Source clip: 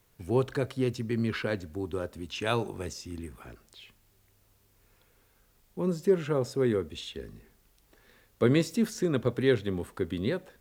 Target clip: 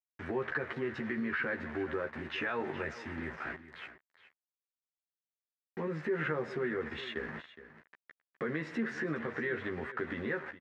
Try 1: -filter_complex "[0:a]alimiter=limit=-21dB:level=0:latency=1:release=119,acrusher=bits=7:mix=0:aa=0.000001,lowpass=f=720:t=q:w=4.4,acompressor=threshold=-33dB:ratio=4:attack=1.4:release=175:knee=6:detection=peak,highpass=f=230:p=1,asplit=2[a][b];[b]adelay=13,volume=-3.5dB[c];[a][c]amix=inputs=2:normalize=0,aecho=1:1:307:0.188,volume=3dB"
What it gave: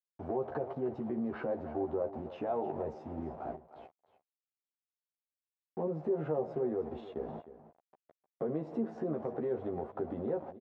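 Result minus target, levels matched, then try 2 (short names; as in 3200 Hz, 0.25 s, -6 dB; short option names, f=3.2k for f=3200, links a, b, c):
2000 Hz band -19.5 dB; echo 0.108 s early
-filter_complex "[0:a]alimiter=limit=-21dB:level=0:latency=1:release=119,acrusher=bits=7:mix=0:aa=0.000001,lowpass=f=1.8k:t=q:w=4.4,acompressor=threshold=-33dB:ratio=4:attack=1.4:release=175:knee=6:detection=peak,highpass=f=230:p=1,asplit=2[a][b];[b]adelay=13,volume=-3.5dB[c];[a][c]amix=inputs=2:normalize=0,aecho=1:1:415:0.188,volume=3dB"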